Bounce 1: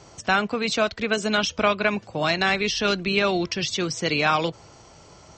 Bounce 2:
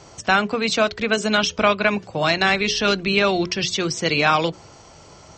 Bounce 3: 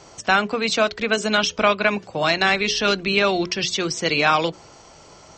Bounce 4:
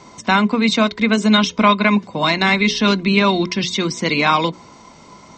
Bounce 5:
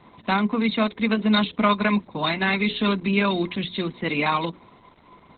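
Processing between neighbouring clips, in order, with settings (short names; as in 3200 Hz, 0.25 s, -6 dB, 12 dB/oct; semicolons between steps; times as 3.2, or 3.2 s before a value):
notches 60/120/180/240/300/360/420 Hz; gain +3.5 dB
bell 91 Hz -6 dB 1.9 oct
small resonant body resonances 220/1000/2100/3700 Hz, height 14 dB, ringing for 35 ms; gain -1 dB
gain -5.5 dB; Opus 8 kbps 48000 Hz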